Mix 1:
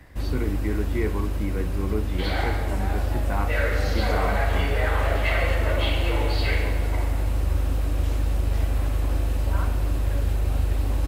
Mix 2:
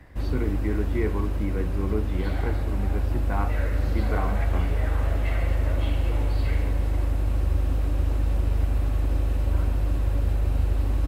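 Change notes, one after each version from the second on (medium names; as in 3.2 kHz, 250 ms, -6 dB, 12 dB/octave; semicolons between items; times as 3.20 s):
second sound -9.5 dB; master: add treble shelf 3.1 kHz -7.5 dB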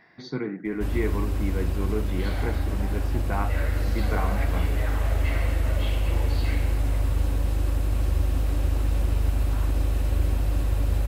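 first sound: entry +0.65 s; master: add treble shelf 3.1 kHz +7.5 dB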